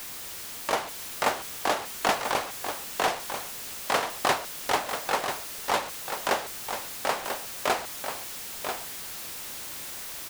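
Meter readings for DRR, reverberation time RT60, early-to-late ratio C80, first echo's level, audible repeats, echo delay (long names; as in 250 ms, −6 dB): no reverb audible, no reverb audible, no reverb audible, −7.5 dB, 1, 990 ms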